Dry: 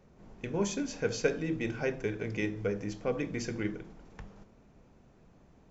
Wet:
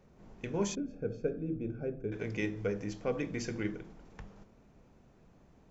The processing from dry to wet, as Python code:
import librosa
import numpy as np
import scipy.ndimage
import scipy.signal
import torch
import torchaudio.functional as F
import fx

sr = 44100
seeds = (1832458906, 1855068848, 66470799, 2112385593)

y = fx.moving_average(x, sr, points=45, at=(0.75, 2.12))
y = y * 10.0 ** (-1.5 / 20.0)